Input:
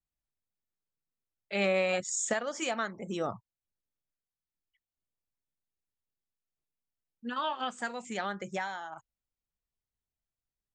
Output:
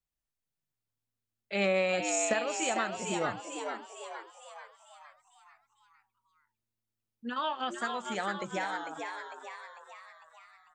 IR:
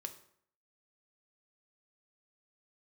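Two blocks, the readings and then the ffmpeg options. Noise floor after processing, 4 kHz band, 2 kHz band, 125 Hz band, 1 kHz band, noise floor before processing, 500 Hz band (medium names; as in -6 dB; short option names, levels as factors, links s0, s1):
under -85 dBFS, +1.5 dB, +1.5 dB, 0.0 dB, +2.5 dB, under -85 dBFS, +1.0 dB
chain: -filter_complex "[0:a]asplit=8[s0][s1][s2][s3][s4][s5][s6][s7];[s1]adelay=450,afreqshift=110,volume=0.531[s8];[s2]adelay=900,afreqshift=220,volume=0.275[s9];[s3]adelay=1350,afreqshift=330,volume=0.143[s10];[s4]adelay=1800,afreqshift=440,volume=0.075[s11];[s5]adelay=2250,afreqshift=550,volume=0.0389[s12];[s6]adelay=2700,afreqshift=660,volume=0.0202[s13];[s7]adelay=3150,afreqshift=770,volume=0.0105[s14];[s0][s8][s9][s10][s11][s12][s13][s14]amix=inputs=8:normalize=0"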